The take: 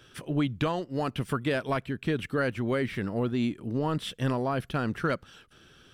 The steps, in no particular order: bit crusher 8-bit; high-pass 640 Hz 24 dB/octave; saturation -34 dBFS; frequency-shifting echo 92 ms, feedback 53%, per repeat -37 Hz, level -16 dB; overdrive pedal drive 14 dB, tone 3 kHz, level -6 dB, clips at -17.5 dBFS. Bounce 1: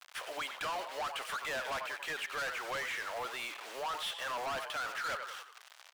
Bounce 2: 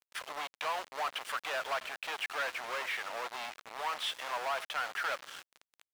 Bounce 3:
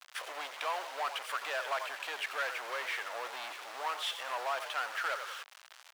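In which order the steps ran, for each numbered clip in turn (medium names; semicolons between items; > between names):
bit crusher > frequency-shifting echo > high-pass > overdrive pedal > saturation; saturation > frequency-shifting echo > high-pass > bit crusher > overdrive pedal; frequency-shifting echo > saturation > bit crusher > overdrive pedal > high-pass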